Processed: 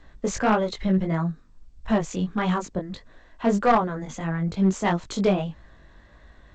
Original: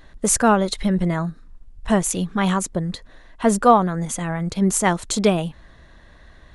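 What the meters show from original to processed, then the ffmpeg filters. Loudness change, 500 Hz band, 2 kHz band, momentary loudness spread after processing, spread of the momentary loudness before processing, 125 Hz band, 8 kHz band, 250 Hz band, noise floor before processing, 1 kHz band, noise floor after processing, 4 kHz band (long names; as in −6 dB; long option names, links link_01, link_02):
−4.5 dB, −4.0 dB, −4.0 dB, 11 LU, 11 LU, −3.0 dB, −15.5 dB, −3.5 dB, −49 dBFS, −5.0 dB, −53 dBFS, −7.0 dB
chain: -filter_complex "[0:a]highshelf=frequency=4600:gain=-11,acrossover=split=210|3000[link_01][link_02][link_03];[link_01]acompressor=threshold=-19dB:ratio=2.5[link_04];[link_04][link_02][link_03]amix=inputs=3:normalize=0,flanger=delay=17.5:depth=3.8:speed=1.6,aeval=exprs='clip(val(0),-1,0.178)':channel_layout=same" -ar 16000 -c:a g722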